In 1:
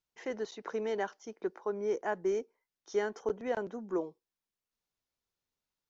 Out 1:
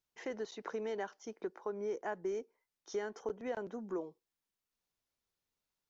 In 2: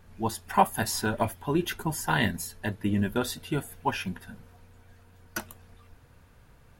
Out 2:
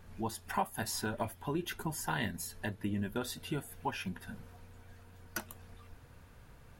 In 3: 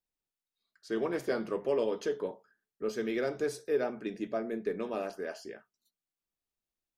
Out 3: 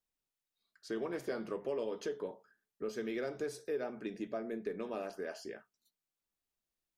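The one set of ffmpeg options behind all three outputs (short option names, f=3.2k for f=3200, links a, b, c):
-af "acompressor=threshold=-39dB:ratio=2"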